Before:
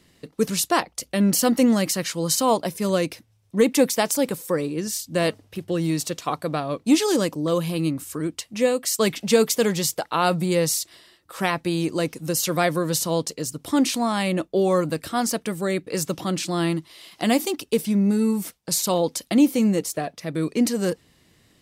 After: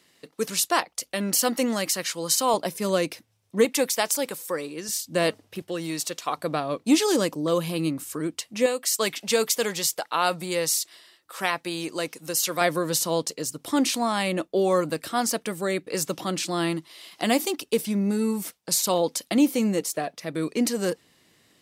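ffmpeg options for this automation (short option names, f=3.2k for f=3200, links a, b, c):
-af "asetnsamples=n=441:p=0,asendcmd='2.54 highpass f 270;3.65 highpass f 780;4.89 highpass f 240;5.62 highpass f 640;6.37 highpass f 220;8.66 highpass f 720;12.61 highpass f 290',highpass=f=610:p=1"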